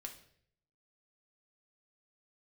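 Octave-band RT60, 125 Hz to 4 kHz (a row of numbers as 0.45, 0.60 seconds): 0.90, 0.75, 0.70, 0.50, 0.60, 0.55 seconds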